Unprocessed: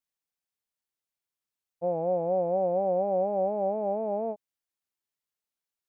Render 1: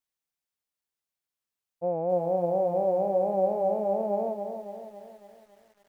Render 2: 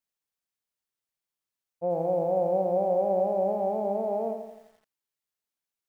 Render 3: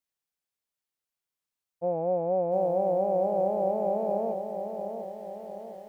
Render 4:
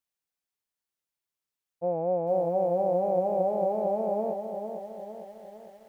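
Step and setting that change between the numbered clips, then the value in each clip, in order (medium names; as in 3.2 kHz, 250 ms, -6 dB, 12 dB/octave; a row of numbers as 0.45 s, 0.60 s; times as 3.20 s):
bit-crushed delay, time: 278 ms, 85 ms, 703 ms, 454 ms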